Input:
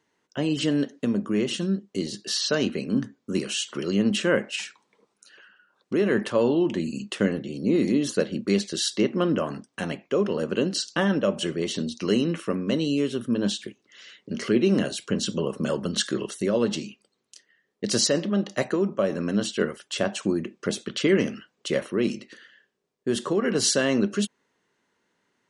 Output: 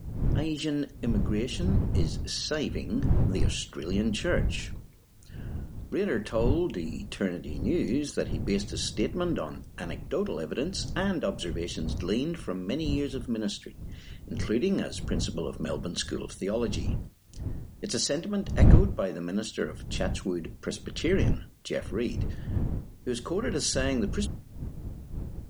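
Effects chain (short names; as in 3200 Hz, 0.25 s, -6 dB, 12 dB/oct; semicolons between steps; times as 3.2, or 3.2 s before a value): wind noise 120 Hz -25 dBFS; requantised 10-bit, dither triangular; gain -6 dB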